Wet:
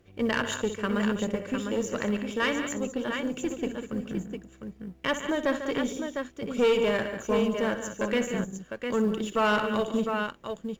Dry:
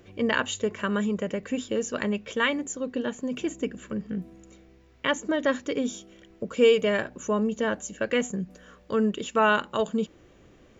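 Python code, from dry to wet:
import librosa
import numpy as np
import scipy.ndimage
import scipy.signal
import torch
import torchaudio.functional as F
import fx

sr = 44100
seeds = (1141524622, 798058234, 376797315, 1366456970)

y = fx.law_mismatch(x, sr, coded='A')
y = fx.low_shelf(y, sr, hz=100.0, db=6.5)
y = fx.echo_multitap(y, sr, ms=(62, 145, 197, 704), db=(-12.0, -12.0, -12.0, -7.0))
y = fx.tube_stage(y, sr, drive_db=17.0, bias=0.4)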